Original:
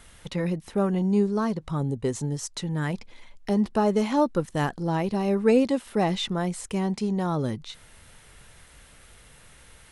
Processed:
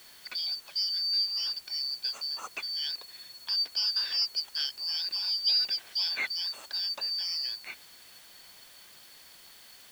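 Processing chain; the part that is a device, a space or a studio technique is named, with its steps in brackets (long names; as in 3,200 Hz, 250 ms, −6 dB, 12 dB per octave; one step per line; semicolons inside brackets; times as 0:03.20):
split-band scrambled radio (band-splitting scrambler in four parts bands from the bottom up 4321; band-pass filter 310–3,400 Hz; white noise bed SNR 22 dB)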